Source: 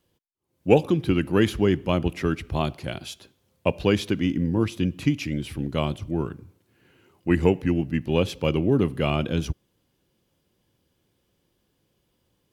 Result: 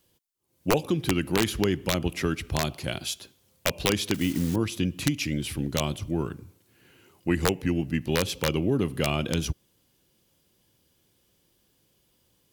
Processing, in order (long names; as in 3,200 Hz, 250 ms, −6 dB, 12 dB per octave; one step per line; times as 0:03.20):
0:04.14–0:04.56: one scale factor per block 5 bits
high-shelf EQ 3,500 Hz +10 dB
downward compressor 2 to 1, threshold −23 dBFS, peak gain reduction 7.5 dB
wrap-around overflow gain 12.5 dB